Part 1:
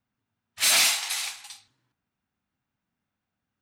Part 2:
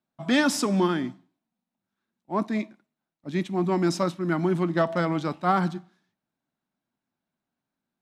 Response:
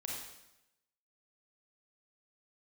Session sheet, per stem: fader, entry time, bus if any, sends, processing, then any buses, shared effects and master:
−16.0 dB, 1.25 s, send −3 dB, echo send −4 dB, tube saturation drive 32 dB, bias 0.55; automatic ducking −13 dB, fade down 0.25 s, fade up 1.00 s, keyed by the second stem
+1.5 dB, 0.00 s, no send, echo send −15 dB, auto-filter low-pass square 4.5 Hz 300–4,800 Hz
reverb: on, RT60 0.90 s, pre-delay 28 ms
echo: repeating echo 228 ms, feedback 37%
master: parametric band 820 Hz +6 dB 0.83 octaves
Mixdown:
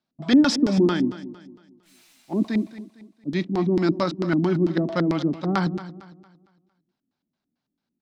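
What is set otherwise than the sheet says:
stem 1 −16.0 dB → −26.5 dB
master: missing parametric band 820 Hz +6 dB 0.83 octaves

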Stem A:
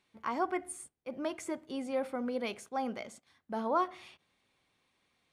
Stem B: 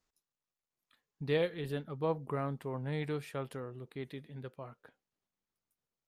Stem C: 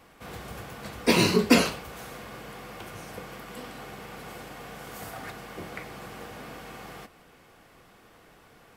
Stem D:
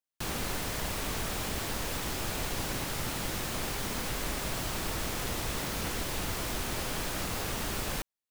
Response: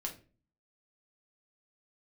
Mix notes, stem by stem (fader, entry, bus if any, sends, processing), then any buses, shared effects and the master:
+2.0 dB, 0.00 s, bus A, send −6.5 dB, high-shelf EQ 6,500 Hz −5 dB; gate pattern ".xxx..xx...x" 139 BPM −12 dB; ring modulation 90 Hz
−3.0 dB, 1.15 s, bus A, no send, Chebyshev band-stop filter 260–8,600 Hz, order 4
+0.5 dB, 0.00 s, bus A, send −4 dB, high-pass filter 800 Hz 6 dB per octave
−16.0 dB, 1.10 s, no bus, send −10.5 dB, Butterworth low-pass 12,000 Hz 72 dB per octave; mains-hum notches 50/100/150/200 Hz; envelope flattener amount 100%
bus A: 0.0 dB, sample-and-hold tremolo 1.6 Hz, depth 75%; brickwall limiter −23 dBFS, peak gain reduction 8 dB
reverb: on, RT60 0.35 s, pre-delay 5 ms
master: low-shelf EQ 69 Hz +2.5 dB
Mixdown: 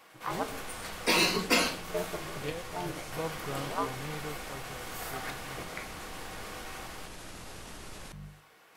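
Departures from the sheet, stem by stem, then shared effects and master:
stem B: missing Chebyshev band-stop filter 260–8,600 Hz, order 4
stem D: entry 1.10 s → 0.10 s

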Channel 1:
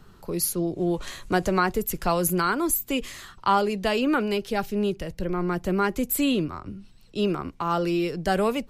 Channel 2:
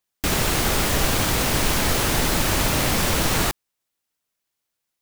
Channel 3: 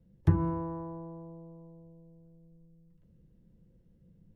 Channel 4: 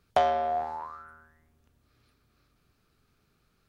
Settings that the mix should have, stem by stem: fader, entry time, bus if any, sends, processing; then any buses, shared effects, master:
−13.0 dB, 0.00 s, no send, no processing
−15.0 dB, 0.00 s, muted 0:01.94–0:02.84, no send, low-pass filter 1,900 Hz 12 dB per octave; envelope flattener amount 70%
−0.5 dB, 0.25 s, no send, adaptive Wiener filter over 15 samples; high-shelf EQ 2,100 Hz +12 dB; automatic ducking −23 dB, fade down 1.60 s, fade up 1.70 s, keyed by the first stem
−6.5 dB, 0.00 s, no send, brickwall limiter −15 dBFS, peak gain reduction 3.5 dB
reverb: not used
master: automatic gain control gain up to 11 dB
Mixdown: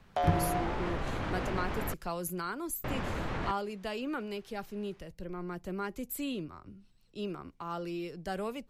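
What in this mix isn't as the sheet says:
stem 3: entry 0.25 s → 0.00 s
master: missing automatic gain control gain up to 11 dB

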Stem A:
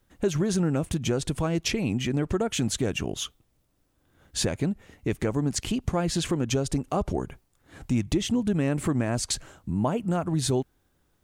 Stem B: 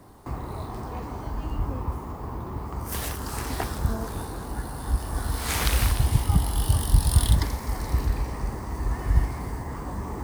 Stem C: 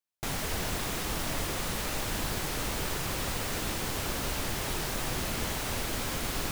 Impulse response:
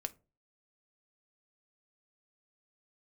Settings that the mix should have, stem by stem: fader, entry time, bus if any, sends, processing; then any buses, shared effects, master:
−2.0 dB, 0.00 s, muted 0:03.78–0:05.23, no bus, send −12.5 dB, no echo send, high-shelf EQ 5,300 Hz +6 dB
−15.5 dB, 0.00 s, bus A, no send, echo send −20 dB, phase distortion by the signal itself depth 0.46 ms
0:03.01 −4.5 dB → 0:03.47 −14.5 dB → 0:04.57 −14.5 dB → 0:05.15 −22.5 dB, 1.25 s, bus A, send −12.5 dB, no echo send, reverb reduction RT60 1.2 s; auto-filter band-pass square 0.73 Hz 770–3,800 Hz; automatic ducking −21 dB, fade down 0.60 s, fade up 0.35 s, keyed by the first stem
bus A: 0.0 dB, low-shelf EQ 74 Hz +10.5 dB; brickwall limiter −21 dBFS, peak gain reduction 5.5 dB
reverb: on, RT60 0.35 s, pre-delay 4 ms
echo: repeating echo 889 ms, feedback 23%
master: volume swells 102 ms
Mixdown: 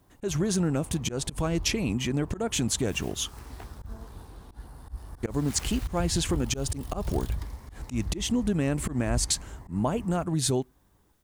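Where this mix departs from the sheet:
stem A: send −12.5 dB → −20.5 dB
stem C −4.5 dB → −13.5 dB

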